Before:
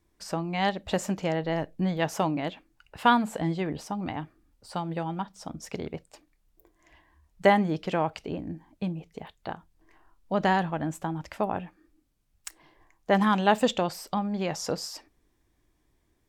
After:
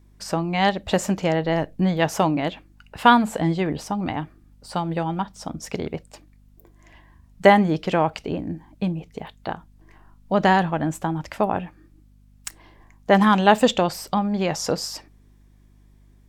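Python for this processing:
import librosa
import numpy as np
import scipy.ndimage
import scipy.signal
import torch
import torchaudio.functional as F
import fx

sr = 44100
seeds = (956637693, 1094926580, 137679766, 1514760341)

y = fx.add_hum(x, sr, base_hz=50, snr_db=30)
y = F.gain(torch.from_numpy(y), 6.5).numpy()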